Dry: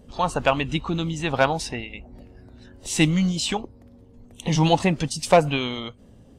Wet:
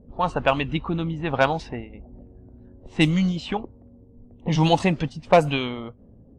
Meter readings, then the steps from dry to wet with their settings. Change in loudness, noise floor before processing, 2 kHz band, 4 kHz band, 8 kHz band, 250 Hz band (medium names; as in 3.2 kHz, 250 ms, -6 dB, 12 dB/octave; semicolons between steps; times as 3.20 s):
0.0 dB, -51 dBFS, -0.5 dB, -3.0 dB, -13.0 dB, 0.0 dB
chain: level-controlled noise filter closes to 520 Hz, open at -14 dBFS